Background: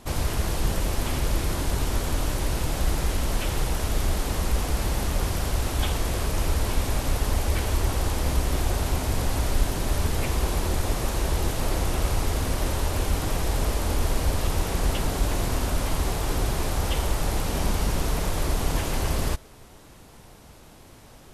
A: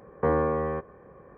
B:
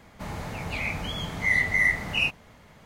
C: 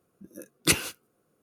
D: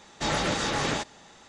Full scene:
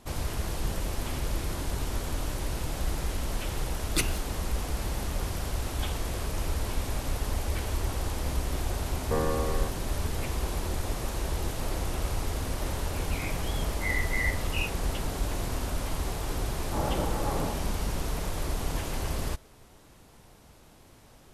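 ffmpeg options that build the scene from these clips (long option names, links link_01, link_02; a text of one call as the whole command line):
ffmpeg -i bed.wav -i cue0.wav -i cue1.wav -i cue2.wav -i cue3.wav -filter_complex "[0:a]volume=-6dB[link_01];[4:a]lowpass=frequency=1100:width=0.5412,lowpass=frequency=1100:width=1.3066[link_02];[3:a]atrim=end=1.42,asetpts=PTS-STARTPTS,volume=-6.5dB,afade=type=in:duration=0.004:curve=hsin,afade=type=out:start_time=1.416:duration=0.004:curve=hsin,adelay=145089S[link_03];[1:a]atrim=end=1.37,asetpts=PTS-STARTPTS,volume=-5dB,afade=type=in:duration=0.004:curve=hsin,afade=type=out:start_time=1.366:duration=0.004:curve=hsin,adelay=8880[link_04];[2:a]atrim=end=2.85,asetpts=PTS-STARTPTS,volume=-9dB,afade=type=in:duration=0.004:curve=hsin,afade=type=out:start_time=2.846:duration=0.004:curve=hsin,adelay=12390[link_05];[link_02]atrim=end=1.48,asetpts=PTS-STARTPTS,volume=-2.5dB,afade=type=in:duration=0.004:curve=hsin,afade=type=out:start_time=1.476:duration=0.004:curve=hsin,adelay=16510[link_06];[link_01][link_03][link_04][link_05][link_06]amix=inputs=5:normalize=0" out.wav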